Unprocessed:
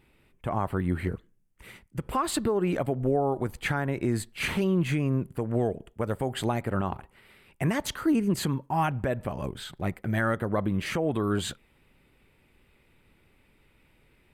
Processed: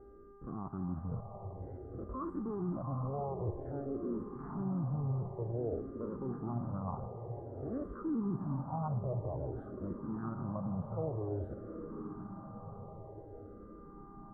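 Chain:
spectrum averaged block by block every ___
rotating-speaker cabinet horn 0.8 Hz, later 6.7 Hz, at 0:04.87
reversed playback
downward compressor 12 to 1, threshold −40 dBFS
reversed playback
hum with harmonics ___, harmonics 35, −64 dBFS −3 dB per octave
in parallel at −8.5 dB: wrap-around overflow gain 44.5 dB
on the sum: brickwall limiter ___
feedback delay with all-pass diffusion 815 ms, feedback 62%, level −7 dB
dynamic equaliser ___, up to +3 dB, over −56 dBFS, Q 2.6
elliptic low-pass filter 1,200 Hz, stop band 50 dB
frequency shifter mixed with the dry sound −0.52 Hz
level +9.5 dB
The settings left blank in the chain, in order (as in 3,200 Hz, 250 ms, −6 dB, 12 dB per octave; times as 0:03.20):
50 ms, 400 Hz, −35.5 dBFS, 120 Hz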